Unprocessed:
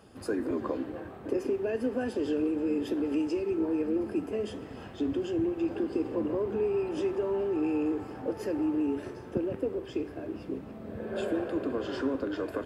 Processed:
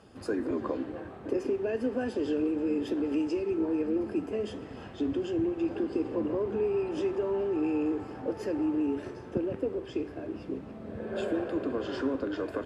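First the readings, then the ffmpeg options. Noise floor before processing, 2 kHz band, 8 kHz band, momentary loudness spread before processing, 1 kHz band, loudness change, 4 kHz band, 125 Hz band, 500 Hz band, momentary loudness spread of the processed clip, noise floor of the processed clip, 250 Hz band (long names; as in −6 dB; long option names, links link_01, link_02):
−45 dBFS, 0.0 dB, can't be measured, 8 LU, 0.0 dB, 0.0 dB, 0.0 dB, 0.0 dB, 0.0 dB, 8 LU, −45 dBFS, 0.0 dB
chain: -af "lowpass=8500"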